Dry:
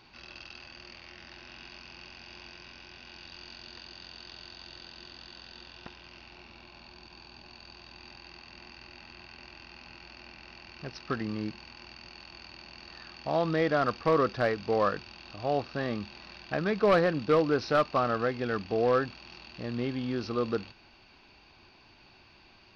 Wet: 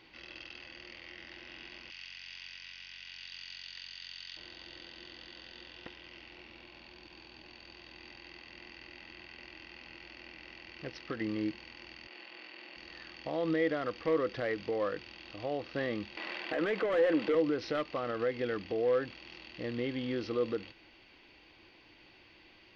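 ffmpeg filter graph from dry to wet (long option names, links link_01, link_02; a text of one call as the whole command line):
ffmpeg -i in.wav -filter_complex "[0:a]asettb=1/sr,asplit=3[link_01][link_02][link_03];[link_01]atrim=end=1.904[link_04];[link_02]atrim=start=1.9:end=4.37,asetpts=PTS-STARTPTS,afade=type=in:duration=0.004:curve=qsin,afade=type=out:start_time=2.466:duration=0.004:curve=qsin,highpass=1500,highshelf=frequency=3400:gain=8,aeval=exprs='val(0)+0.000708*(sin(2*PI*50*n/s)+sin(2*PI*2*50*n/s)/2+sin(2*PI*3*50*n/s)/3+sin(2*PI*4*50*n/s)/4+sin(2*PI*5*50*n/s)/5)':channel_layout=same[link_05];[link_03]atrim=start=4.366[link_06];[link_04][link_05]acrossfade=duration=0.004:curve1=hsin:curve2=qsin[link_07];[link_07][link_06]acrossfade=duration=0.004:curve1=qsin:curve2=hsin,asettb=1/sr,asplit=3[link_08][link_09][link_10];[link_08]atrim=end=12.074[link_11];[link_09]atrim=start=12.07:end=12.76,asetpts=PTS-STARTPTS,afade=type=in:duration=0.004:curve=qsin,afade=type=out:start_time=0.686:duration=0.004:curve=qsin,highpass=310,lowpass=4000,asplit=2[link_12][link_13];[link_13]adelay=42,volume=-3.5dB[link_14];[link_12][link_14]amix=inputs=2:normalize=0,atrim=end_sample=30429[link_15];[link_10]atrim=start=12.756[link_16];[link_11][link_15]acrossfade=duration=0.004:curve1=hsin:curve2=qsin[link_17];[link_17][link_16]acrossfade=duration=0.004:curve1=qsin:curve2=hsin,asettb=1/sr,asplit=3[link_18][link_19][link_20];[link_18]atrim=end=16.174[link_21];[link_19]atrim=start=16.17:end=17.35,asetpts=PTS-STARTPTS,afade=type=in:duration=0.004:curve=qsin,afade=type=out:start_time=1.176:duration=0.004:curve=qsin,highpass=200,asplit=2[link_22][link_23];[link_23]highpass=frequency=720:poles=1,volume=22dB,asoftclip=type=tanh:threshold=-12dB[link_24];[link_22][link_24]amix=inputs=2:normalize=0,lowpass=frequency=1300:poles=1,volume=-6dB[link_25];[link_20]atrim=start=17.346[link_26];[link_21][link_25]acrossfade=duration=0.004:curve1=hsin:curve2=qsin[link_27];[link_27][link_26]acrossfade=duration=0.004:curve1=qsin:curve2=hsin,alimiter=limit=-23.5dB:level=0:latency=1:release=91,equalizer=frequency=315:width_type=o:width=0.33:gain=10,equalizer=frequency=500:width_type=o:width=0.33:gain=10,equalizer=frequency=2000:width_type=o:width=0.33:gain=12,equalizer=frequency=3150:width_type=o:width=0.33:gain=9,volume=-6dB" out.wav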